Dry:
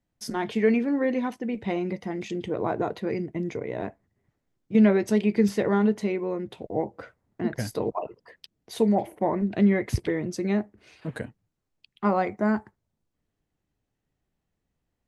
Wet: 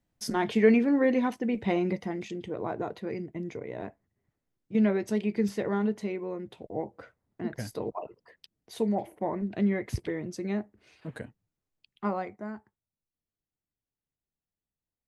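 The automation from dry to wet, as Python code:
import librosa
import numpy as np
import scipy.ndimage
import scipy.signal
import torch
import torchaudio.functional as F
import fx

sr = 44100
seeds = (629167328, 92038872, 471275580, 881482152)

y = fx.gain(x, sr, db=fx.line((1.94, 1.0), (2.37, -6.0), (12.05, -6.0), (12.55, -16.0)))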